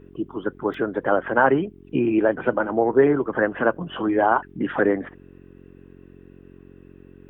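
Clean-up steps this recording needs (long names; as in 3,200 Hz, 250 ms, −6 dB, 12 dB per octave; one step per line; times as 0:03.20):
hum removal 45.4 Hz, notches 9
repair the gap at 0:00.74, 3.4 ms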